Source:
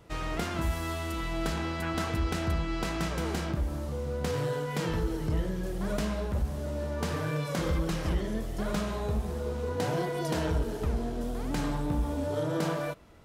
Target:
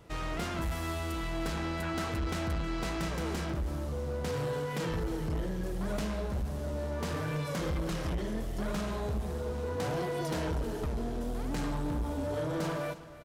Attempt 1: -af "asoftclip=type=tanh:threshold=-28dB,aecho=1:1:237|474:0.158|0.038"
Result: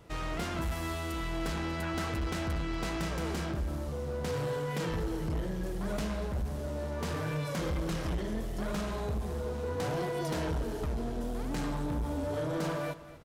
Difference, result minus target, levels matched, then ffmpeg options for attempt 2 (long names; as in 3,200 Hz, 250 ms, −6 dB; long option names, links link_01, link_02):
echo 79 ms early
-af "asoftclip=type=tanh:threshold=-28dB,aecho=1:1:316|632:0.158|0.038"